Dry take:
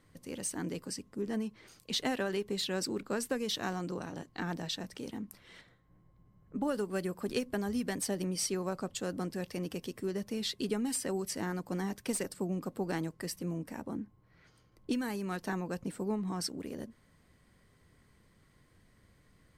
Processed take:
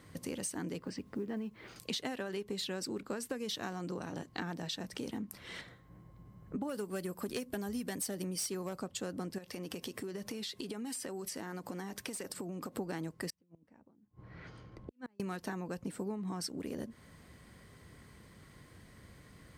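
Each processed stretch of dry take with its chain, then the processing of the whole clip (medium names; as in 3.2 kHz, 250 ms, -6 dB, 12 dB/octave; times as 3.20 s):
0.78–1.76 s: low-pass 3 kHz + companded quantiser 8-bit
6.69–8.82 s: treble shelf 8.8 kHz +10 dB + overload inside the chain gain 26.5 dB
9.38–12.77 s: bass shelf 220 Hz -7 dB + compression 10:1, threshold -44 dBFS
13.30–15.20 s: compressor with a negative ratio -41 dBFS, ratio -0.5 + inverted gate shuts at -38 dBFS, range -33 dB + tape spacing loss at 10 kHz 21 dB
whole clip: high-pass 44 Hz; compression 5:1, threshold -46 dBFS; trim +9 dB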